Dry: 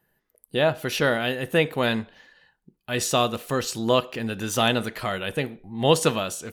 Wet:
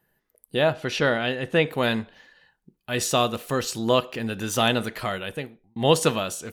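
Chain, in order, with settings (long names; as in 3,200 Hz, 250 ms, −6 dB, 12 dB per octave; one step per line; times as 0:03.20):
0:00.74–0:01.68: low-pass filter 6,200 Hz 12 dB per octave
0:05.06–0:05.76: fade out linear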